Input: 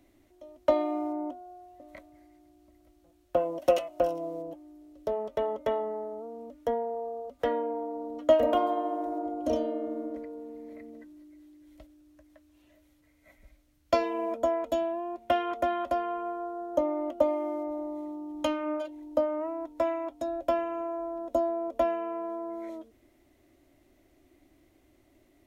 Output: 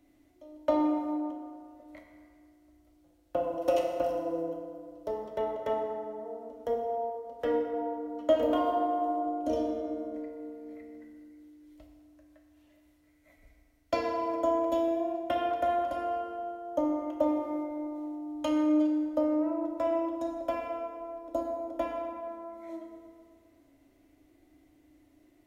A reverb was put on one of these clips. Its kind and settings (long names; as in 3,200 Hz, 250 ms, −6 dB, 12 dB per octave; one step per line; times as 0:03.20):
feedback delay network reverb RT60 2.1 s, low-frequency decay 0.85×, high-frequency decay 0.6×, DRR 0 dB
level −5 dB